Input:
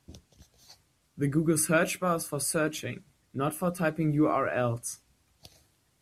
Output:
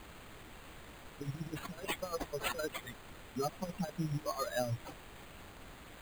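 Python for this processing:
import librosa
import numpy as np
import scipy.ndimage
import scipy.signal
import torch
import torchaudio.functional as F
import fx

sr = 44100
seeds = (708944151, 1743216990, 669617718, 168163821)

y = fx.bin_expand(x, sr, power=3.0)
y = fx.highpass(y, sr, hz=180.0, slope=6)
y = fx.env_lowpass(y, sr, base_hz=1700.0, full_db=-32.0)
y = fx.peak_eq(y, sr, hz=2400.0, db=-9.5, octaves=1.2)
y = fx.over_compress(y, sr, threshold_db=-39.0, ratio=-0.5)
y = fx.dmg_noise_colour(y, sr, seeds[0], colour='pink', level_db=-54.0)
y = fx.vibrato(y, sr, rate_hz=2.5, depth_cents=5.5)
y = np.repeat(y[::8], 8)[:len(y)]
y = y * 10.0 ** (2.0 / 20.0)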